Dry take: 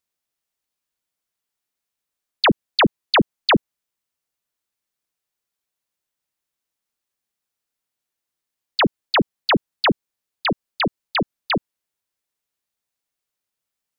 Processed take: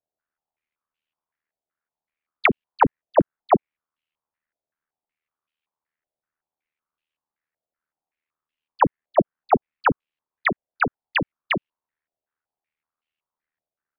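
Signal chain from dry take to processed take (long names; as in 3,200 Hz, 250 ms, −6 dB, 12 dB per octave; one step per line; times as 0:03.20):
ring modulation 39 Hz
low-pass on a step sequencer 5.3 Hz 660–2,800 Hz
level −1.5 dB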